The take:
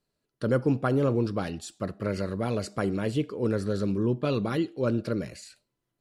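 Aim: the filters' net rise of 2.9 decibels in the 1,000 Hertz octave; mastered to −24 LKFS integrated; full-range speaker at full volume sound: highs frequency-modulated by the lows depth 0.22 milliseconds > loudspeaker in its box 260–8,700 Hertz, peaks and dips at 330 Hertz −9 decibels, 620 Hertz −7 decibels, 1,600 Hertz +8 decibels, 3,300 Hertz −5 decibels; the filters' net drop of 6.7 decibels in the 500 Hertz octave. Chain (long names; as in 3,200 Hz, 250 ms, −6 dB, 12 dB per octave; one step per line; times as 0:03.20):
parametric band 500 Hz −4 dB
parametric band 1,000 Hz +4 dB
highs frequency-modulated by the lows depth 0.22 ms
loudspeaker in its box 260–8,700 Hz, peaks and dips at 330 Hz −9 dB, 620 Hz −7 dB, 1,600 Hz +8 dB, 3,300 Hz −5 dB
level +9.5 dB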